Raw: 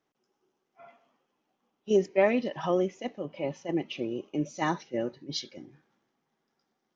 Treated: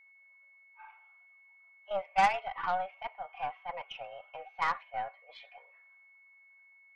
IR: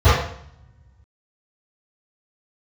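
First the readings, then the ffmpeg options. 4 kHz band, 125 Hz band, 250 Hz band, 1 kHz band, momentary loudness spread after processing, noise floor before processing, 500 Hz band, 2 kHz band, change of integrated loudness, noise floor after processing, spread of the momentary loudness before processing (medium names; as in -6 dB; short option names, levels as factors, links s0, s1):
-6.0 dB, -18.0 dB, -24.5 dB, +5.5 dB, 24 LU, -81 dBFS, -12.5 dB, +1.0 dB, -4.0 dB, -61 dBFS, 13 LU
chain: -af "highpass=f=550:t=q:w=0.5412,highpass=f=550:t=q:w=1.307,lowpass=f=2600:t=q:w=0.5176,lowpass=f=2600:t=q:w=0.7071,lowpass=f=2600:t=q:w=1.932,afreqshift=190,aeval=exprs='val(0)+0.00126*sin(2*PI*2200*n/s)':c=same,aeval=exprs='0.188*(cos(1*acos(clip(val(0)/0.188,-1,1)))-cos(1*PI/2))+0.0422*(cos(2*acos(clip(val(0)/0.188,-1,1)))-cos(2*PI/2))+0.0119*(cos(8*acos(clip(val(0)/0.188,-1,1)))-cos(8*PI/2))':c=same"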